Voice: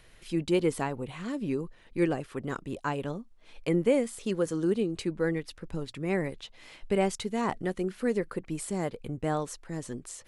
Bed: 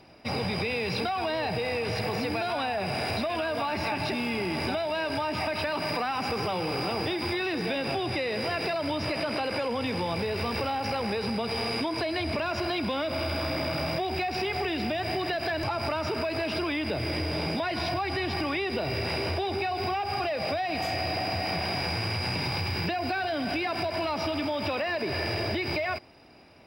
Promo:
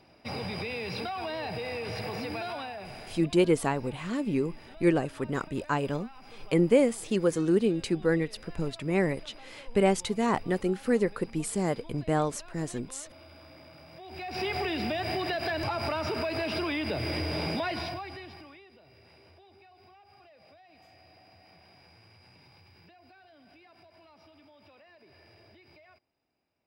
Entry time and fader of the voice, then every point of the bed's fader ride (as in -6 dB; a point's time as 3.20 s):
2.85 s, +3.0 dB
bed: 2.47 s -5.5 dB
3.42 s -22 dB
13.90 s -22 dB
14.44 s -1.5 dB
17.69 s -1.5 dB
18.77 s -28 dB